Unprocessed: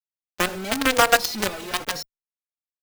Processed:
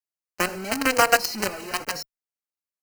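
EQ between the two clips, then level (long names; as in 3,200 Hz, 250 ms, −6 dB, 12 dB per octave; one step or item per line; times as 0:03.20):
Butterworth band-reject 3,500 Hz, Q 3.8
low-shelf EQ 86 Hz −6.5 dB
−1.0 dB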